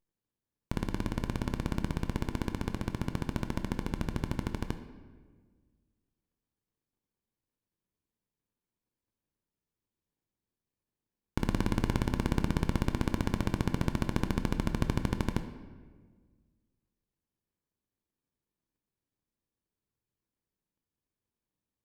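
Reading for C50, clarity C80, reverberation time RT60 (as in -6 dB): 10.0 dB, 11.5 dB, 1.6 s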